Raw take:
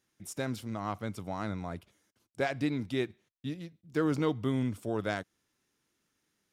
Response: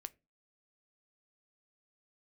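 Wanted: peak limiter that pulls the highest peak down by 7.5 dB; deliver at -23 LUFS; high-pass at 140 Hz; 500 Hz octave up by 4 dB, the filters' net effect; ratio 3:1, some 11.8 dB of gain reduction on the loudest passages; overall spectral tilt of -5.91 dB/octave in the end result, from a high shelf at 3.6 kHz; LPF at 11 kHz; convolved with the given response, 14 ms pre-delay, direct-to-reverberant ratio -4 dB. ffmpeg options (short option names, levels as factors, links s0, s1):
-filter_complex "[0:a]highpass=140,lowpass=11000,equalizer=f=500:t=o:g=5,highshelf=f=3600:g=-4.5,acompressor=threshold=0.0126:ratio=3,alimiter=level_in=2.66:limit=0.0631:level=0:latency=1,volume=0.376,asplit=2[s0][s1];[1:a]atrim=start_sample=2205,adelay=14[s2];[s1][s2]afir=irnorm=-1:irlink=0,volume=2.82[s3];[s0][s3]amix=inputs=2:normalize=0,volume=6.31"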